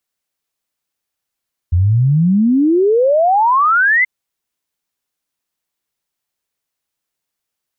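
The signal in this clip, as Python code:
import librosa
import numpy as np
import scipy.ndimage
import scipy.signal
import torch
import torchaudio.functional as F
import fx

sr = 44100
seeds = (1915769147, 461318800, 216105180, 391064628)

y = fx.ess(sr, length_s=2.33, from_hz=83.0, to_hz=2100.0, level_db=-9.0)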